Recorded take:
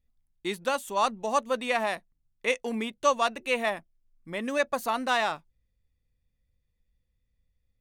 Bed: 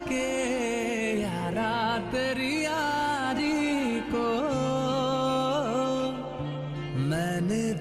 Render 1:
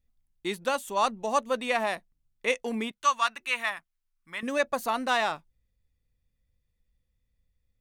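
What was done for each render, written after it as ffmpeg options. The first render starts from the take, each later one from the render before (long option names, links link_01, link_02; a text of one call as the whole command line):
ffmpeg -i in.wav -filter_complex "[0:a]asettb=1/sr,asplit=3[link_01][link_02][link_03];[link_01]atrim=end=2.914[link_04];[link_02]atrim=start=2.91:end=4.43,asetpts=PTS-STARTPTS,afade=type=in:duration=0.004:curve=qsin,afade=type=out:start_time=1.516:duration=0.004:curve=qsin,lowshelf=frequency=790:width_type=q:width=1.5:gain=-13[link_05];[link_03]atrim=start=4.426[link_06];[link_04][link_05]acrossfade=duration=0.004:curve1=hsin:curve2=qsin[link_07];[link_07][link_06]acrossfade=duration=0.004:curve1=qsin:curve2=hsin" out.wav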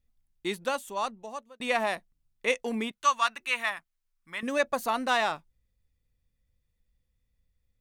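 ffmpeg -i in.wav -filter_complex "[0:a]asplit=2[link_01][link_02];[link_01]atrim=end=1.6,asetpts=PTS-STARTPTS,afade=type=out:start_time=0.48:duration=1.12[link_03];[link_02]atrim=start=1.6,asetpts=PTS-STARTPTS,afade=type=in:duration=0.004:curve=hsin[link_04];[link_03][link_04]concat=n=2:v=0:a=1" out.wav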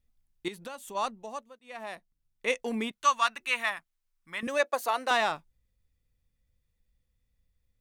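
ffmpeg -i in.wav -filter_complex "[0:a]asettb=1/sr,asplit=3[link_01][link_02][link_03];[link_01]atrim=end=0.484[link_04];[link_02]atrim=start=0.48:end=0.95,asetpts=PTS-STARTPTS,afade=type=in:duration=0.004:curve=qsin,afade=type=out:start_time=0.466:duration=0.004:curve=qsin,acompressor=threshold=-38dB:ratio=5:attack=3.2:release=140:knee=1:detection=peak[link_05];[link_03]atrim=start=0.946[link_06];[link_04][link_05]acrossfade=duration=0.004:curve1=hsin:curve2=qsin[link_07];[link_07][link_06]acrossfade=duration=0.004:curve1=qsin:curve2=hsin,asettb=1/sr,asplit=3[link_08][link_09][link_10];[link_08]atrim=end=4.474[link_11];[link_09]atrim=start=4.47:end=5.11,asetpts=PTS-STARTPTS,afade=type=in:duration=0.004:curve=qsin,afade=type=out:start_time=0.636:duration=0.004:curve=qsin,highpass=frequency=350:width=0.5412,highpass=frequency=350:width=1.3066[link_12];[link_10]atrim=start=5.106[link_13];[link_11][link_12]acrossfade=duration=0.004:curve1=hsin:curve2=qsin[link_14];[link_14][link_13]acrossfade=duration=0.004:curve1=qsin:curve2=hsin,asplit=2[link_15][link_16];[link_15]atrim=end=1.59,asetpts=PTS-STARTPTS,afade=type=out:start_time=1.586:duration=0.004:curve=hsin[link_17];[link_16]atrim=start=1.59,asetpts=PTS-STARTPTS,afade=type=in:duration=1.51:curve=qsin[link_18];[link_17][link_18]concat=n=2:v=0:a=1" out.wav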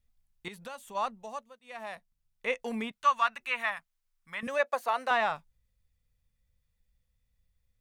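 ffmpeg -i in.wav -filter_complex "[0:a]acrossover=split=2900[link_01][link_02];[link_02]acompressor=threshold=-49dB:ratio=4:attack=1:release=60[link_03];[link_01][link_03]amix=inputs=2:normalize=0,equalizer=frequency=330:width_type=o:width=0.46:gain=-14.5" out.wav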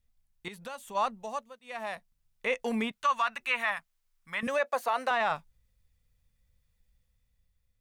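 ffmpeg -i in.wav -af "alimiter=limit=-22dB:level=0:latency=1:release=26,dynaudnorm=framelen=180:gausssize=9:maxgain=4dB" out.wav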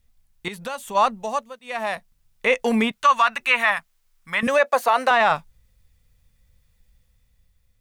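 ffmpeg -i in.wav -af "volume=10.5dB" out.wav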